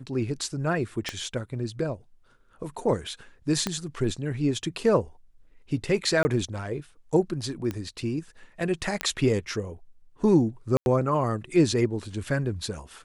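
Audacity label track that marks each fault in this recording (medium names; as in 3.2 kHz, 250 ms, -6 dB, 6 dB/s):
1.090000	1.090000	pop -14 dBFS
3.670000	3.670000	pop -12 dBFS
6.230000	6.250000	dropout 20 ms
7.710000	7.710000	pop -18 dBFS
9.010000	9.010000	pop -10 dBFS
10.770000	10.860000	dropout 91 ms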